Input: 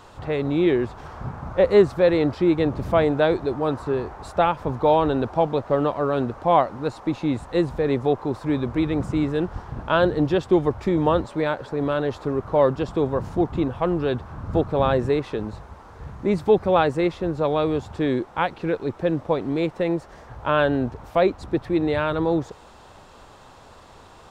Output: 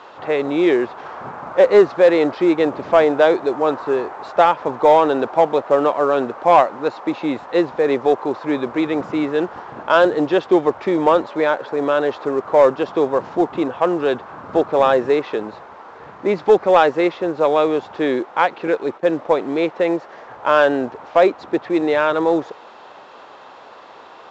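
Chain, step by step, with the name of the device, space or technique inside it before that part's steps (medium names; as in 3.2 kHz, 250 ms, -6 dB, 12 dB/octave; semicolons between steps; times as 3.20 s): 18.67–19.13 s: gate -32 dBFS, range -15 dB; telephone (band-pass 380–3400 Hz; saturation -9.5 dBFS, distortion -21 dB; trim +8 dB; µ-law 128 kbps 16 kHz)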